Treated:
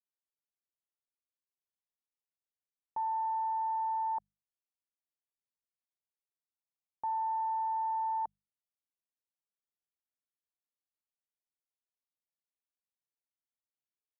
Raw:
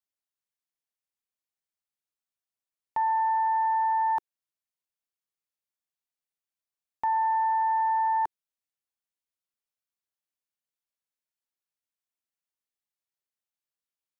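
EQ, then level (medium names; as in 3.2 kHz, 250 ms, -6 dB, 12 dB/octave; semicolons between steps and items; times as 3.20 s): low-pass 1.1 kHz 24 dB/octave; dynamic bell 740 Hz, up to +4 dB, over -41 dBFS, Q 3.8; hum notches 50/100/150/200 Hz; -8.5 dB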